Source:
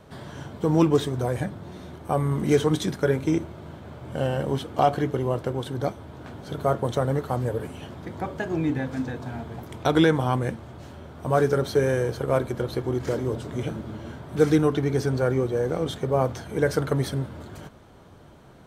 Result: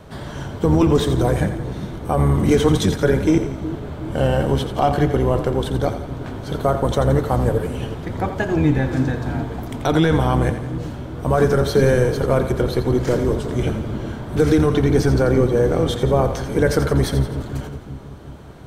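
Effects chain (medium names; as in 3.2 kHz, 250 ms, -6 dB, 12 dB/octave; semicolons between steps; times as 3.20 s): octave divider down 1 oct, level -3 dB; peak limiter -13.5 dBFS, peak gain reduction 7 dB; two-band feedback delay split 390 Hz, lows 369 ms, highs 86 ms, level -10 dB; trim +7 dB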